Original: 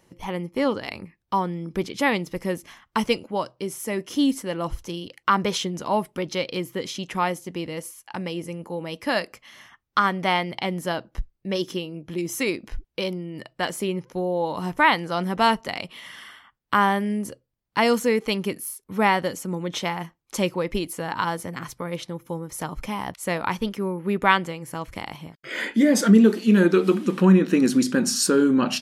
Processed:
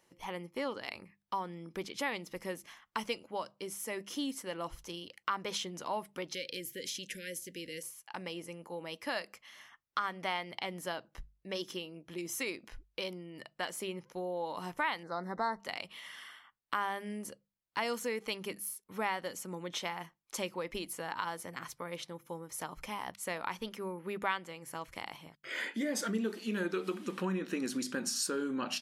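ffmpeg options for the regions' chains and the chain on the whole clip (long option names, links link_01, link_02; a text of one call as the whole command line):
ffmpeg -i in.wav -filter_complex "[0:a]asettb=1/sr,asplit=3[link_01][link_02][link_03];[link_01]atrim=end=6.344[link_04];[link_02]atrim=start=6.34:end=7.83,asetpts=PTS-STARTPTS,afade=type=in:duration=0.004:curve=qsin,afade=type=out:start_time=1.486:duration=0.004:curve=qsin,aemphasis=mode=production:type=cd,acompressor=threshold=-28dB:ratio=2:attack=3.2:release=140:knee=1:detection=peak,asuperstop=centerf=940:order=20:qfactor=1[link_05];[link_03]atrim=start=7.826[link_06];[link_04][link_05]acrossfade=duration=0.004:curve1=hsin:curve2=qsin[link_07];[link_07][link_06]acrossfade=duration=0.004:curve1=qsin:curve2=hsin,asettb=1/sr,asplit=3[link_08][link_09][link_10];[link_08]atrim=end=15.034[link_11];[link_09]atrim=start=15.03:end=15.6,asetpts=PTS-STARTPTS,afade=type=in:duration=0.004:curve=qsin,afade=type=out:start_time=0.566:duration=0.004:curve=qsin,asuperstop=centerf=2800:order=20:qfactor=1.9,aemphasis=mode=reproduction:type=75fm[link_12];[link_10]atrim=start=15.596[link_13];[link_11][link_12]acrossfade=duration=0.004:curve1=hsin:curve2=qsin[link_14];[link_14][link_13]acrossfade=duration=0.004:curve1=qsin:curve2=hsin,lowshelf=frequency=350:gain=-11,bandreject=frequency=50:width_type=h:width=6,bandreject=frequency=100:width_type=h:width=6,bandreject=frequency=150:width_type=h:width=6,bandreject=frequency=200:width_type=h:width=6,acompressor=threshold=-28dB:ratio=2,volume=-6.5dB" out.wav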